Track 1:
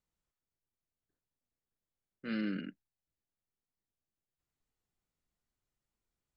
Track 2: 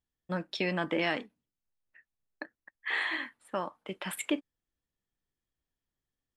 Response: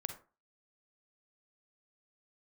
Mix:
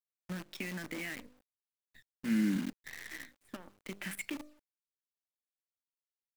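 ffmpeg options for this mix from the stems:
-filter_complex "[0:a]lowshelf=f=240:g=6,volume=-2dB,asplit=2[a][b];[1:a]acontrast=51,bandreject=f=50:t=h:w=6,bandreject=f=100:t=h:w=6,bandreject=f=150:t=h:w=6,bandreject=f=200:t=h:w=6,bandreject=f=250:t=h:w=6,bandreject=f=300:t=h:w=6,bandreject=f=350:t=h:w=6,bandreject=f=400:t=h:w=6,bandreject=f=450:t=h:w=6,acompressor=threshold=-30dB:ratio=6,volume=-8.5dB[c];[b]apad=whole_len=280672[d];[c][d]sidechaincompress=threshold=-50dB:ratio=4:attack=6.1:release=863[e];[a][e]amix=inputs=2:normalize=0,equalizer=f=250:t=o:w=1:g=8,equalizer=f=500:t=o:w=1:g=-6,equalizer=f=1k:t=o:w=1:g=-12,equalizer=f=2k:t=o:w=1:g=10,equalizer=f=4k:t=o:w=1:g=-8,acrusher=bits=8:dc=4:mix=0:aa=0.000001"

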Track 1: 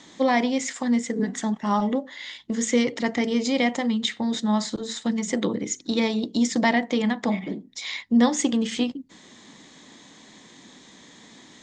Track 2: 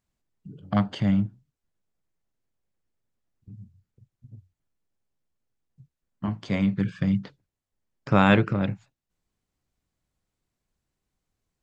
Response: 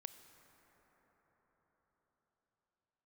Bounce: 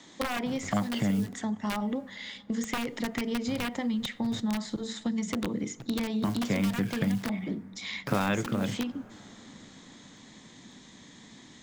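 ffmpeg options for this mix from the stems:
-filter_complex "[0:a]aeval=exprs='(mod(5.01*val(0)+1,2)-1)/5.01':c=same,acompressor=threshold=-23dB:ratio=6,asubboost=boost=2:cutoff=250,volume=-5.5dB,asplit=2[a][b];[b]volume=-6.5dB[c];[1:a]dynaudnorm=f=130:g=13:m=3.5dB,acrusher=bits=8:dc=4:mix=0:aa=0.000001,volume=1dB,asplit=2[d][e];[e]volume=-15dB[f];[2:a]atrim=start_sample=2205[g];[c][f]amix=inputs=2:normalize=0[h];[h][g]afir=irnorm=-1:irlink=0[i];[a][d][i]amix=inputs=3:normalize=0,acrossover=split=160|3500[j][k][l];[j]acompressor=threshold=-41dB:ratio=4[m];[k]acompressor=threshold=-27dB:ratio=4[n];[l]acompressor=threshold=-43dB:ratio=4[o];[m][n][o]amix=inputs=3:normalize=0"

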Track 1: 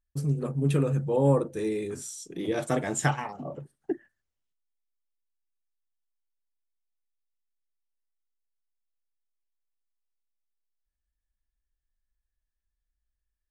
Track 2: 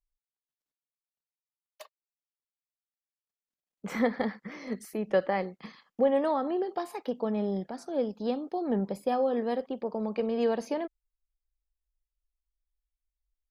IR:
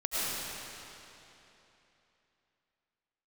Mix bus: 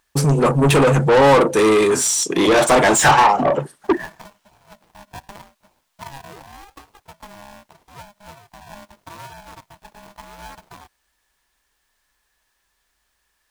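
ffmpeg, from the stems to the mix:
-filter_complex "[0:a]asplit=2[a][b];[b]highpass=f=720:p=1,volume=31dB,asoftclip=type=tanh:threshold=-9dB[c];[a][c]amix=inputs=2:normalize=0,lowpass=f=6.3k:p=1,volume=-6dB,volume=3dB[d];[1:a]highshelf=f=7.6k:g=4,acrusher=samples=39:mix=1:aa=0.000001:lfo=1:lforange=23.4:lforate=0.83,aeval=exprs='val(0)*sgn(sin(2*PI*410*n/s))':c=same,volume=-13.5dB[e];[d][e]amix=inputs=2:normalize=0,equalizer=f=950:w=2.5:g=5.5"

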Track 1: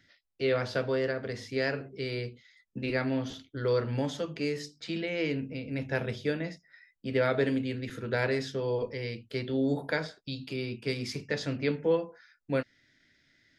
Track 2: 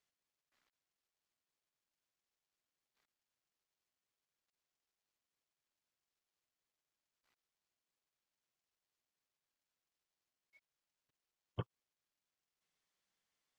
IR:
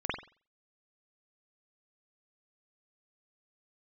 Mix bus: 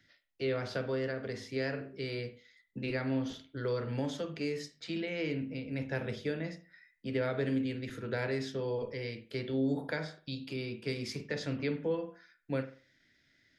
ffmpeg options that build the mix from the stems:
-filter_complex "[0:a]volume=-4dB,asplit=2[a][b];[b]volume=-16.5dB[c];[1:a]volume=-13.5dB[d];[2:a]atrim=start_sample=2205[e];[c][e]afir=irnorm=-1:irlink=0[f];[a][d][f]amix=inputs=3:normalize=0,acrossover=split=260[g][h];[h]acompressor=threshold=-34dB:ratio=2[i];[g][i]amix=inputs=2:normalize=0"

